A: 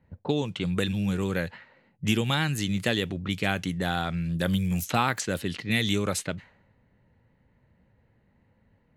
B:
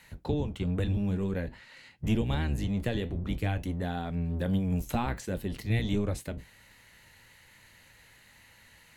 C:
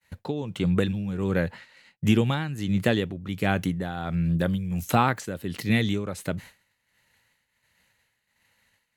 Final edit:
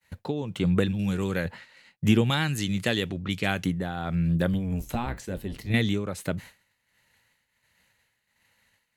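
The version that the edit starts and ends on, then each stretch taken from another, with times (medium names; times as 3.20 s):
C
0.99–1.45 s: from A
2.30–3.64 s: from A
4.54–5.74 s: from B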